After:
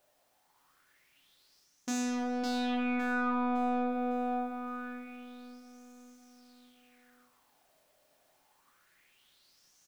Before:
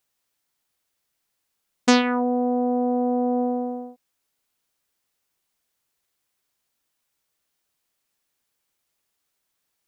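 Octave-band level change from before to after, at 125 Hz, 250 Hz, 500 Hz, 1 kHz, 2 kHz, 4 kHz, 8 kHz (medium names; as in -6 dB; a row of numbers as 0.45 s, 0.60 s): no reading, -8.5 dB, -12.5 dB, -6.5 dB, -5.0 dB, -11.5 dB, -6.5 dB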